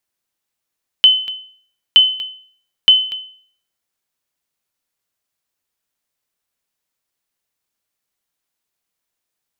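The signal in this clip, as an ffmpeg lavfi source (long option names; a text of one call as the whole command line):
ffmpeg -f lavfi -i "aevalsrc='0.841*(sin(2*PI*3040*mod(t,0.92))*exp(-6.91*mod(t,0.92)/0.52)+0.168*sin(2*PI*3040*max(mod(t,0.92)-0.24,0))*exp(-6.91*max(mod(t,0.92)-0.24,0)/0.52))':duration=2.76:sample_rate=44100" out.wav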